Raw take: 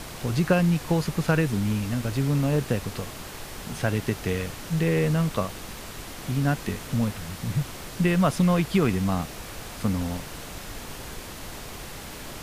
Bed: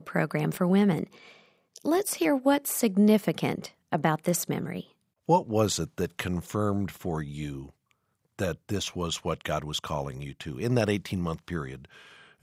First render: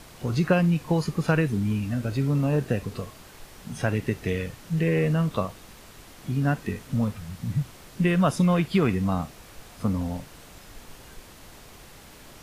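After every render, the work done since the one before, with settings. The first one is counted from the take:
noise reduction from a noise print 9 dB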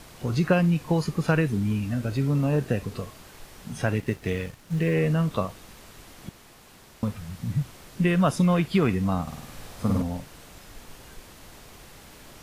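0:03.99–0:04.94: mu-law and A-law mismatch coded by A
0:06.29–0:07.03: fill with room tone
0:09.22–0:10.02: flutter between parallel walls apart 8.9 metres, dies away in 1.1 s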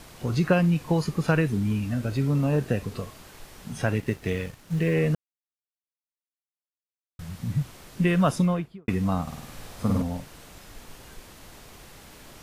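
0:05.15–0:07.19: silence
0:08.30–0:08.88: fade out and dull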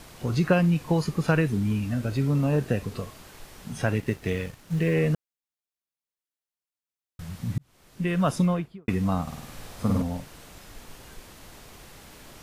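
0:07.58–0:08.42: fade in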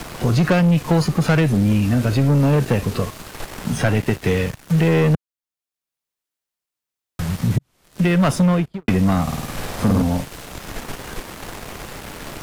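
leveller curve on the samples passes 3
multiband upward and downward compressor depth 40%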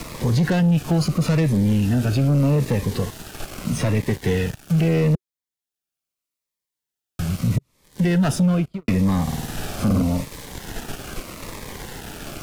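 soft clipping −11 dBFS, distortion −18 dB
phaser whose notches keep moving one way falling 0.79 Hz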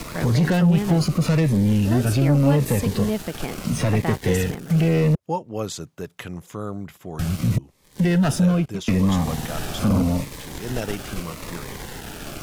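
mix in bed −3.5 dB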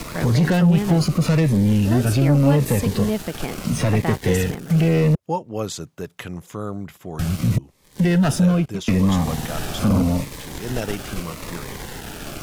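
level +1.5 dB

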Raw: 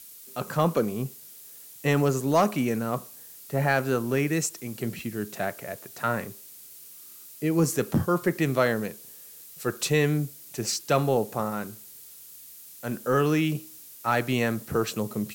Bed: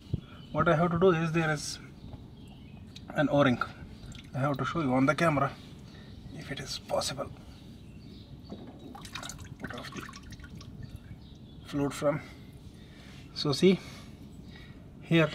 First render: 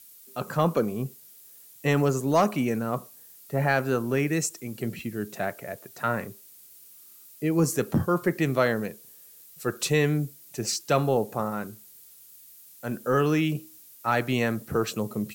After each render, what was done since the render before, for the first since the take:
broadband denoise 6 dB, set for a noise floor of −47 dBFS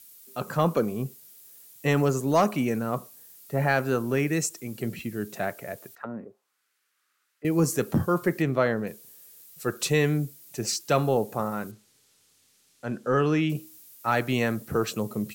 0:05.95–0:07.45: envelope filter 260–1,800 Hz, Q 2.4, down, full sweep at −24 dBFS
0:08.42–0:08.87: low-pass filter 2,200 Hz 6 dB per octave
0:11.71–0:13.50: high-frequency loss of the air 75 metres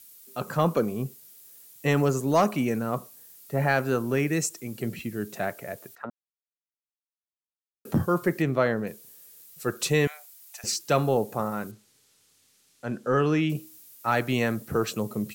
0:06.10–0:07.85: silence
0:10.07–0:10.64: Butterworth high-pass 670 Hz 48 dB per octave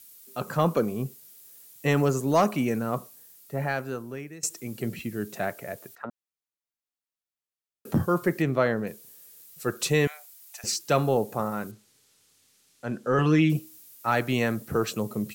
0:03.00–0:04.43: fade out, to −21.5 dB
0:13.18–0:13.59: comb filter 5.9 ms, depth 78%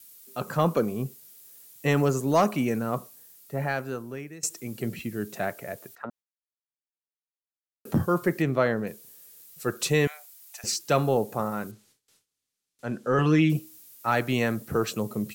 noise gate with hold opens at −52 dBFS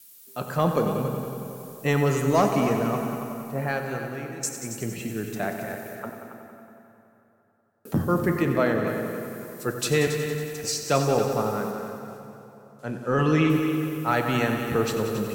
echo machine with several playback heads 92 ms, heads all three, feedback 51%, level −13 dB
dense smooth reverb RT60 3.4 s, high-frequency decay 0.65×, pre-delay 0 ms, DRR 6.5 dB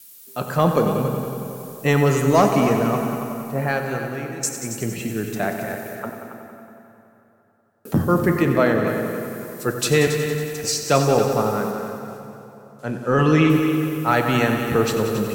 level +5 dB

